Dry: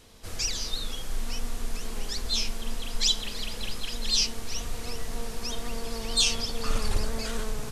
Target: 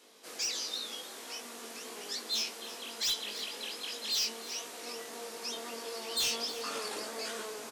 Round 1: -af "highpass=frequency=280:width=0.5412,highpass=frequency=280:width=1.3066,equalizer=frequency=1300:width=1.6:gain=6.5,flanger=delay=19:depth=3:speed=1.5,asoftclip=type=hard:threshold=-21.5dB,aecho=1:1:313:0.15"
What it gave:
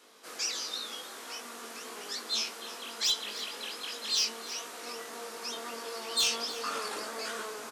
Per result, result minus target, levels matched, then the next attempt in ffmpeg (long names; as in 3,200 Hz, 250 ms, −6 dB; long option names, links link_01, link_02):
hard clipping: distortion −8 dB; 1,000 Hz band +2.5 dB
-af "highpass=frequency=280:width=0.5412,highpass=frequency=280:width=1.3066,equalizer=frequency=1300:width=1.6:gain=6.5,flanger=delay=19:depth=3:speed=1.5,asoftclip=type=hard:threshold=-27.5dB,aecho=1:1:313:0.15"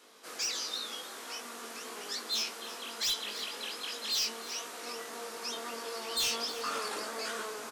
1,000 Hz band +3.5 dB
-af "highpass=frequency=280:width=0.5412,highpass=frequency=280:width=1.3066,flanger=delay=19:depth=3:speed=1.5,asoftclip=type=hard:threshold=-27.5dB,aecho=1:1:313:0.15"